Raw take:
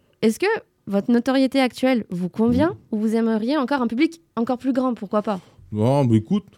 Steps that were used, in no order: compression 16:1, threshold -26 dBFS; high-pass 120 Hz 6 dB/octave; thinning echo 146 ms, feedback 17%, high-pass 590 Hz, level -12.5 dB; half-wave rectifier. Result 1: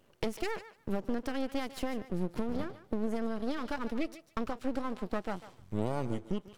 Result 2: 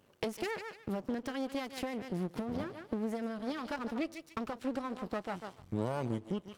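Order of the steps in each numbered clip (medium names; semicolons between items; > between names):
high-pass > compression > half-wave rectifier > thinning echo; thinning echo > compression > half-wave rectifier > high-pass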